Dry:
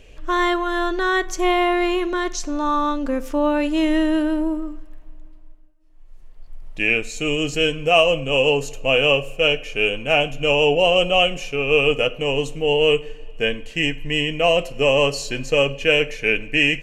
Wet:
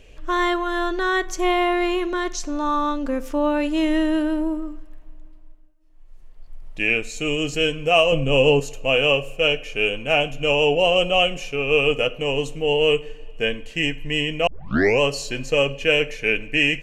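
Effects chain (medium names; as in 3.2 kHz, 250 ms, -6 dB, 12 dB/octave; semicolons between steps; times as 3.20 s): 8.12–8.60 s: bass shelf 370 Hz +9 dB; 14.47 s: tape start 0.54 s; trim -1.5 dB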